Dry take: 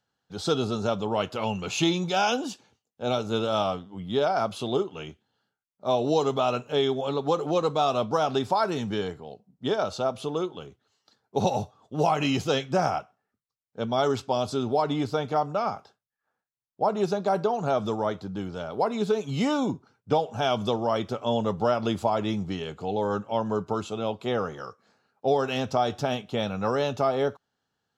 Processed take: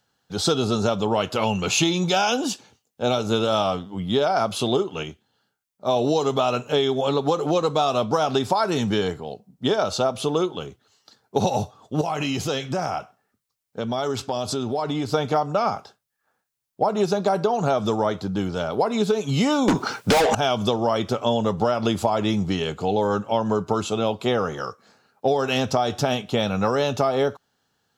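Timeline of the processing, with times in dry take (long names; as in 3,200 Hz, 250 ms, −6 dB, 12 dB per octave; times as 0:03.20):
0:05.03–0:05.96: clip gain −3 dB
0:12.01–0:15.11: downward compressor 3 to 1, threshold −32 dBFS
0:19.68–0:20.35: mid-hump overdrive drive 36 dB, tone 7,000 Hz, clips at −10 dBFS
whole clip: high-shelf EQ 4,900 Hz +5.5 dB; downward compressor, threshold −25 dBFS; level +8 dB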